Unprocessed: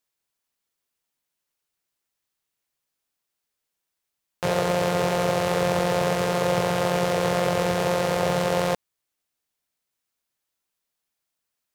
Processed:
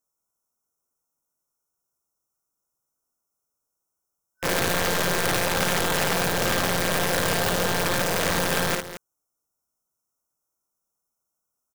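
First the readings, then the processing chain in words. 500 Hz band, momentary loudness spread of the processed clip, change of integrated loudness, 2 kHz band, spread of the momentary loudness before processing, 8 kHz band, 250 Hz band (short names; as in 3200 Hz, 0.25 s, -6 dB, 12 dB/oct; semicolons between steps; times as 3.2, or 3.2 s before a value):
-4.5 dB, 3 LU, +0.5 dB, +5.0 dB, 2 LU, +7.5 dB, -2.0 dB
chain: FFT band-reject 1500–5200 Hz; wrapped overs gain 17.5 dB; loudspeakers at several distances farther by 19 m -4 dB, 76 m -12 dB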